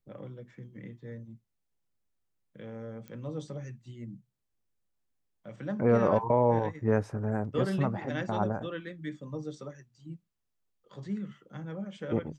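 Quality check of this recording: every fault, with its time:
3.08 s: pop -29 dBFS

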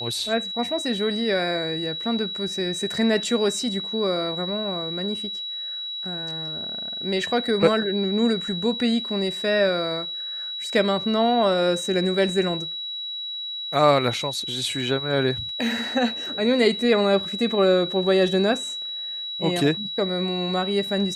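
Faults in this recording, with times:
whine 3.9 kHz -29 dBFS

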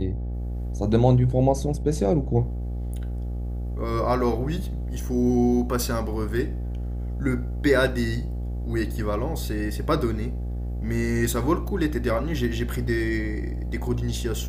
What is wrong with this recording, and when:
buzz 60 Hz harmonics 14 -29 dBFS

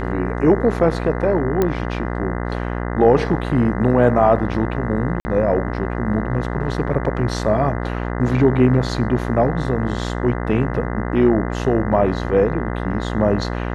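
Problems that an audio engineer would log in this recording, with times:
buzz 60 Hz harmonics 34 -24 dBFS
1.62 s: pop -6 dBFS
5.20–5.25 s: dropout 50 ms

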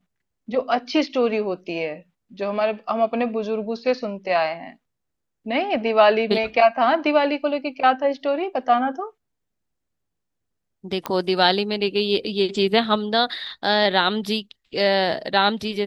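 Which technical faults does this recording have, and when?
11.06 s: pop -10 dBFS

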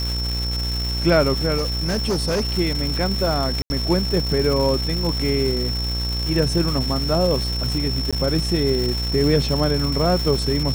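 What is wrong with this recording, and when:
buzz 60 Hz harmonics 28 -25 dBFS
crackle 510 per s -24 dBFS
whine 5.4 kHz -26 dBFS
1.57–2.57 s: clipped -17.5 dBFS
3.62–3.70 s: dropout 80 ms
8.11–8.13 s: dropout 16 ms

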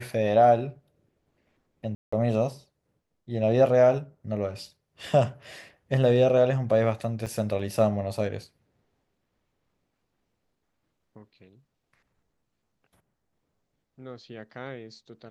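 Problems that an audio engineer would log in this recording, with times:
1.95–2.12 s: dropout 175 ms
7.26–7.27 s: dropout 5.5 ms

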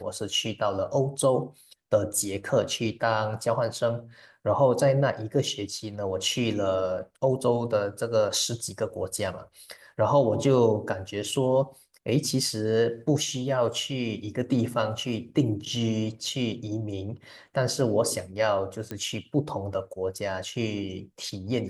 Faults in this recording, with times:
18.91 s: pop -19 dBFS

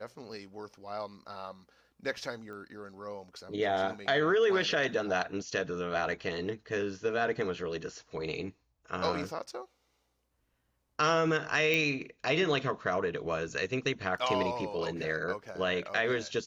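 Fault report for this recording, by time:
2.53 s: pop -35 dBFS
11.74 s: pop -16 dBFS

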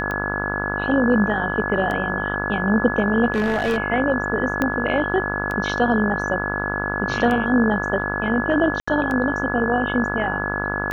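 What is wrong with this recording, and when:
buzz 50 Hz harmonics 33 -27 dBFS
tick 33 1/3 rpm -14 dBFS
whine 1.7 kHz -25 dBFS
3.32–3.78 s: clipped -16.5 dBFS
4.62 s: pop -8 dBFS
8.80–8.88 s: dropout 75 ms

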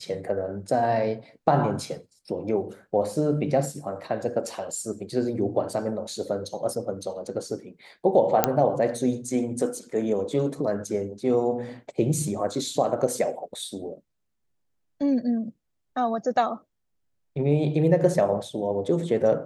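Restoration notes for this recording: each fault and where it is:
8.44 s: pop -2 dBFS

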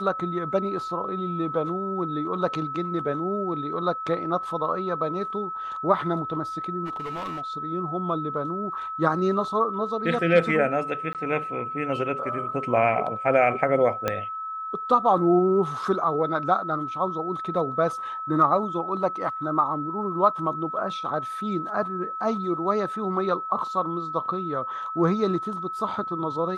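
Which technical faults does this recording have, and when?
whine 1.3 kHz -30 dBFS
6.85–7.42 s: clipped -28.5 dBFS
11.13–11.15 s: dropout 18 ms
14.08 s: pop -10 dBFS

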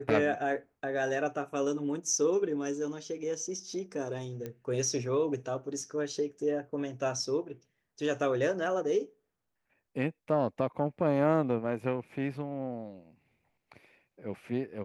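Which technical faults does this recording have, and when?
4.46 s: pop -25 dBFS

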